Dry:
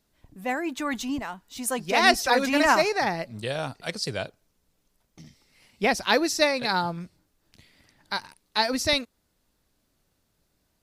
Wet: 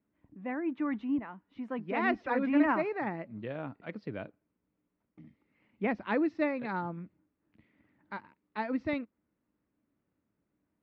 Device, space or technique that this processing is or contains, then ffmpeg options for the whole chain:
bass cabinet: -af "highpass=79,equalizer=f=210:t=q:w=4:g=6,equalizer=f=300:t=q:w=4:g=9,equalizer=f=740:t=q:w=4:g=-4,equalizer=f=1.6k:t=q:w=4:g=-3,lowpass=f=2.2k:w=0.5412,lowpass=f=2.2k:w=1.3066,volume=-8.5dB"

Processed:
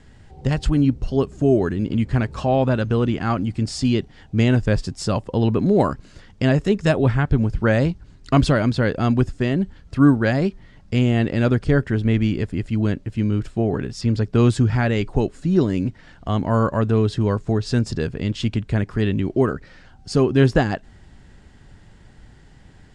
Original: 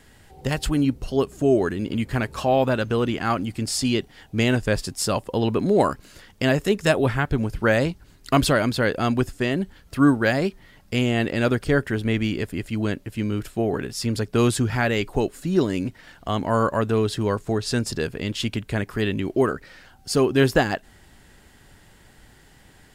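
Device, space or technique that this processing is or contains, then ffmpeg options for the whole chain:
through cloth: -filter_complex "[0:a]asettb=1/sr,asplit=3[a][b][c];[a]atrim=end=14.014[d];[b]atrim=start=14.01:end=14.47,asetpts=PTS-STARTPTS,afade=t=in:d=0.004:c=qsin,afade=t=out:st=0.456:d=0.004:c=qsin,acrossover=split=6000[e][f];[f]acompressor=threshold=-48dB:ratio=4:attack=1:release=60[g];[e][g]amix=inputs=2:normalize=0[h];[c]atrim=start=14.466[i];[d][h]acrossfade=d=0.004:c1=hsin:c2=qsin[j];[j][i]acrossfade=d=0.004:c1=qsin:c2=hsin,lowpass=7.4k,lowpass=f=9.8k:w=0.5412,lowpass=f=9.8k:w=1.3066,bass=f=250:g=7,treble=f=4k:g=7,highshelf=f=3.4k:g=-11"

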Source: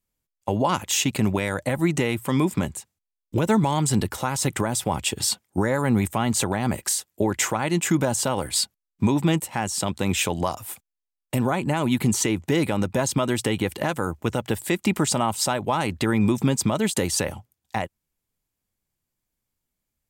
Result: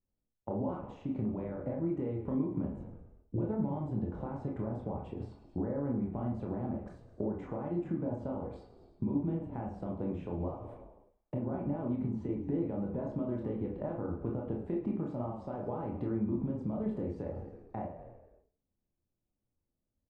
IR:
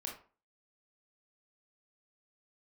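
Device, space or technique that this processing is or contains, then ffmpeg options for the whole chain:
television next door: -filter_complex "[0:a]asplit=6[a][b][c][d][e][f];[b]adelay=107,afreqshift=-31,volume=-15dB[g];[c]adelay=214,afreqshift=-62,volume=-20.5dB[h];[d]adelay=321,afreqshift=-93,volume=-26dB[i];[e]adelay=428,afreqshift=-124,volume=-31.5dB[j];[f]adelay=535,afreqshift=-155,volume=-37.1dB[k];[a][g][h][i][j][k]amix=inputs=6:normalize=0,acompressor=threshold=-30dB:ratio=5,lowpass=580[l];[1:a]atrim=start_sample=2205[m];[l][m]afir=irnorm=-1:irlink=0,volume=1dB"

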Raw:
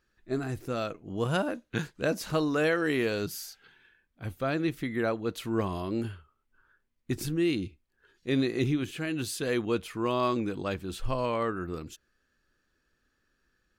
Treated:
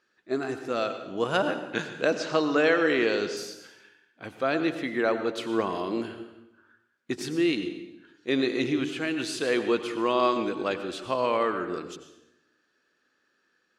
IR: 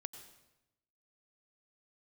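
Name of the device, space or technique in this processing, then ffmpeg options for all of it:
supermarket ceiling speaker: -filter_complex "[0:a]highpass=300,lowpass=6.5k[a];[1:a]atrim=start_sample=2205[b];[a][b]afir=irnorm=-1:irlink=0,asettb=1/sr,asplit=3[c][d][e];[c]atrim=end=2.154[f];[d]atrim=start=2.15:end=3.37,asetpts=PTS-STARTPTS,afade=t=in:d=0.004:c=qsin,afade=t=out:st=1.216:d=0.004:c=qsin,lowpass=f=7.4k:w=0.5412,lowpass=f=7.4k:w=1.3066[g];[e]atrim=start=3.366[h];[f][g]acrossfade=d=0.004:c1=hsin:c2=qsin[i];[i][h]acrossfade=d=0.004:c1=qsin:c2=hsin,volume=8.5dB"

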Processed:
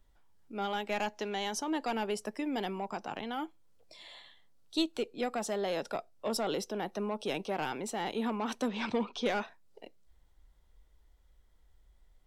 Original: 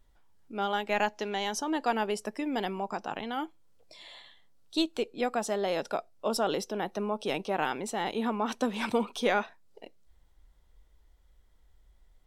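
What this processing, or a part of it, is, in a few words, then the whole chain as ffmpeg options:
one-band saturation: -filter_complex "[0:a]acrossover=split=380|2800[a][b][c];[b]asoftclip=type=tanh:threshold=-27.5dB[d];[a][d][c]amix=inputs=3:normalize=0,asettb=1/sr,asplit=3[e][f][g];[e]atrim=end=8.684[h];[f]atrim=start=8.68:end=9.26,asetpts=PTS-STARTPTS,afade=t=in:d=0.004:c=qsin,afade=t=out:st=0.576:d=0.004:c=qsin,lowpass=f=5.9k:w=0.5412,lowpass=f=5.9k:w=1.3066[i];[g]atrim=start=9.256[j];[h][i]acrossfade=d=0.004:c1=hsin:c2=qsin[k];[k][j]acrossfade=d=0.004:c1=qsin:c2=hsin,volume=-2dB"

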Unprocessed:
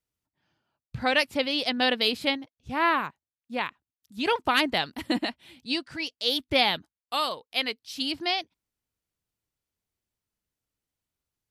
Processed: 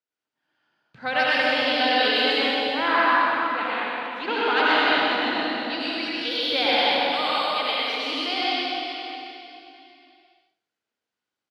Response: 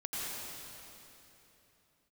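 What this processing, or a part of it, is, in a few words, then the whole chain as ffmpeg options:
station announcement: -filter_complex "[0:a]highpass=300,lowpass=4.6k,equalizer=f=1.5k:t=o:w=0.21:g=6,aecho=1:1:64.14|125.4:0.316|0.631[a];[1:a]atrim=start_sample=2205[b];[a][b]afir=irnorm=-1:irlink=0,asettb=1/sr,asplit=3[c][d][e];[c]atrim=end=4.214[f];[d]atrim=start=4.21:end=5.8,asetpts=PTS-STARTPTS,afade=t=in:d=0.004:c=qsin,afade=t=out:st=1.586:d=0.004:c=qsin,lowpass=f=6.3k:w=0.5412,lowpass=f=6.3k:w=1.3066[g];[e]atrim=start=5.796[h];[f][g]acrossfade=d=0.004:c1=hsin:c2=qsin[i];[i][h]acrossfade=d=0.004:c1=qsin:c2=hsin,equalizer=f=12k:t=o:w=0.36:g=6,aecho=1:1:90|180|270|360:0.119|0.063|0.0334|0.0177"

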